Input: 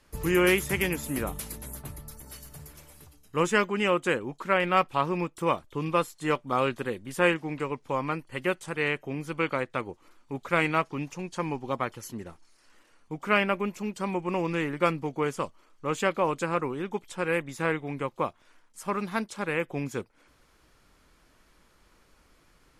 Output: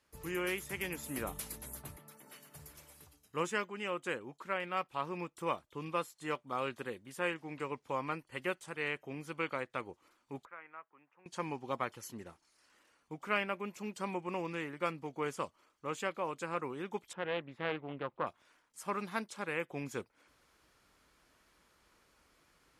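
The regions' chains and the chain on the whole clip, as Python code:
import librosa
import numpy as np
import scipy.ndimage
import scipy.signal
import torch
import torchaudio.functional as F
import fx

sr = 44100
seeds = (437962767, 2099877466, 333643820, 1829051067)

y = fx.chain(x, sr, fx.highpass(hz=160.0, slope=24),
    fx.high_shelf_res(hz=3600.0, db=-6.5, q=1.5), at=(1.96, 2.55))
y = fx.chain(y, sr, fx.lowpass(hz=1600.0, slope=24),
    fx.differentiator(),
    fx.band_squash(depth_pct=40), at=(10.45, 11.26))
y = fx.chain(y, sr, fx.air_absorb(metres=480.0),
    fx.doppler_dist(depth_ms=0.3), at=(17.13, 18.27))
y = scipy.signal.sosfilt(scipy.signal.butter(2, 42.0, 'highpass', fs=sr, output='sos'), y)
y = fx.low_shelf(y, sr, hz=350.0, db=-5.5)
y = fx.rider(y, sr, range_db=4, speed_s=0.5)
y = y * librosa.db_to_amplitude(-8.5)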